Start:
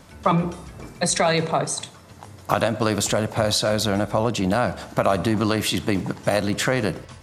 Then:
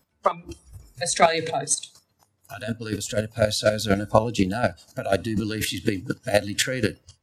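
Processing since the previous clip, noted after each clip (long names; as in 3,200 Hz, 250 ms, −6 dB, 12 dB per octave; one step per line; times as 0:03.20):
automatic gain control gain up to 11.5 dB
square-wave tremolo 4.1 Hz, depth 65%, duty 15%
noise reduction from a noise print of the clip's start 20 dB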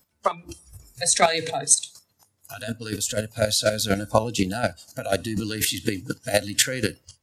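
high-shelf EQ 4,000 Hz +10 dB
level −2 dB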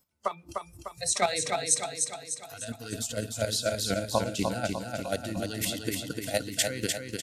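notch filter 1,700 Hz, Q 10
on a send: repeating echo 300 ms, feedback 51%, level −4.5 dB
on the sum: level −7.5 dB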